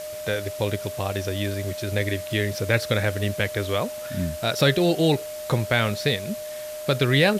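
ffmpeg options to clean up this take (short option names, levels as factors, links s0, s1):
-af "bandreject=f=610:w=30,afwtdn=0.0089"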